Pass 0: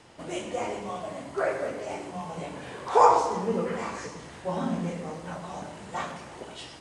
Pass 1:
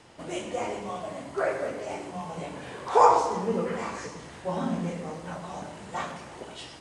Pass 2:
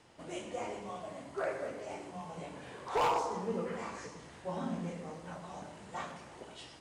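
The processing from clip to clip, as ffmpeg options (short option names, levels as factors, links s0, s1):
-af anull
-af "volume=7.94,asoftclip=hard,volume=0.126,volume=0.398"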